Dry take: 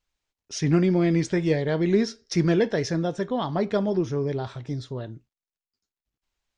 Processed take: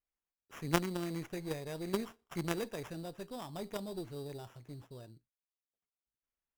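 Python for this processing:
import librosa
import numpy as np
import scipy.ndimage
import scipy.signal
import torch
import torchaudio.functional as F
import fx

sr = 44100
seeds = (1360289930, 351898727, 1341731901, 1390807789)

y = fx.sample_hold(x, sr, seeds[0], rate_hz=4300.0, jitter_pct=0)
y = fx.cheby_harmonics(y, sr, harmonics=(3, 5, 6), levels_db=(-7, -19, -35), full_scale_db=-8.5)
y = y * librosa.db_to_amplitude(-3.5)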